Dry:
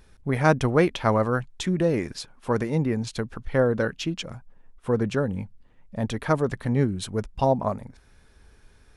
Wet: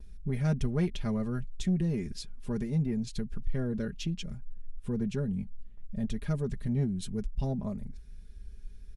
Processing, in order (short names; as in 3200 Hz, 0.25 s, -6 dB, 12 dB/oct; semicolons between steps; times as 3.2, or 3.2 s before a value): passive tone stack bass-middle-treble 10-0-1; gate with hold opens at -58 dBFS; in parallel at -2 dB: compressor, threshold -48 dBFS, peak gain reduction 16.5 dB; on the sum: comb 4.9 ms, depth 66%; soft clip -27 dBFS, distortion -19 dB; gain +8.5 dB